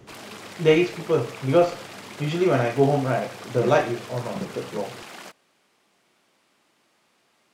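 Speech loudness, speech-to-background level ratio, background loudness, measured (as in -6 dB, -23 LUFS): -23.5 LUFS, 16.0 dB, -39.5 LUFS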